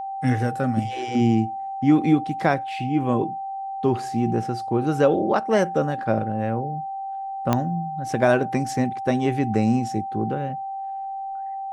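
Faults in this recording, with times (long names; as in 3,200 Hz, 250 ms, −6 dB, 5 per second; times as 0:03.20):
whistle 780 Hz −28 dBFS
0:07.53: click −7 dBFS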